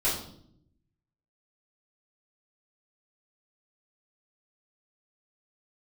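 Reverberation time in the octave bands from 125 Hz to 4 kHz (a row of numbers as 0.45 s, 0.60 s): 1.2 s, 1.1 s, 0.75 s, 0.55 s, 0.45 s, 0.55 s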